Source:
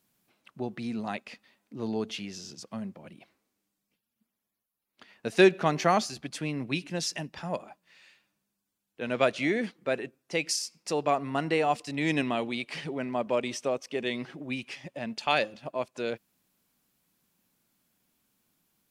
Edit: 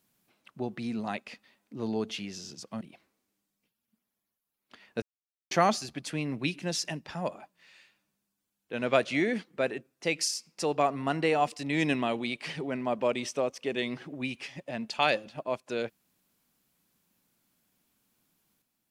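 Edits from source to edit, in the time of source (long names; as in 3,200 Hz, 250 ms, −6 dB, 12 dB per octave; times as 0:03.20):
0:02.81–0:03.09: remove
0:05.30–0:05.79: silence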